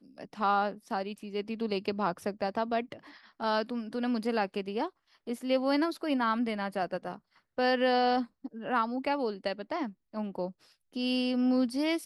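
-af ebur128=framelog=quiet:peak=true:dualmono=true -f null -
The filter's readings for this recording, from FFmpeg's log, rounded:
Integrated loudness:
  I:         -28.3 LUFS
  Threshold: -38.6 LUFS
Loudness range:
  LRA:         3.4 LU
  Threshold: -48.7 LUFS
  LRA low:   -30.5 LUFS
  LRA high:  -27.1 LUFS
True peak:
  Peak:      -14.8 dBFS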